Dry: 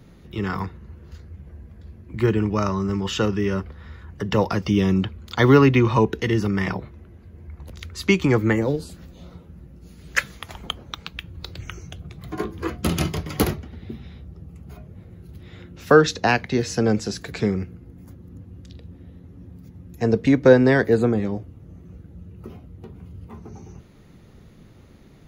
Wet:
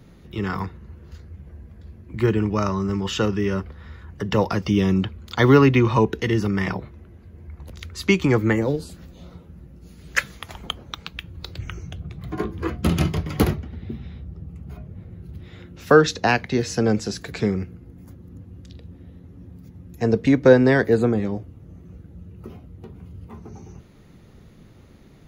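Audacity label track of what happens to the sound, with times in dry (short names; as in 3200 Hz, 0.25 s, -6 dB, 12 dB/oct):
11.580000	15.440000	tone controls bass +4 dB, treble -5 dB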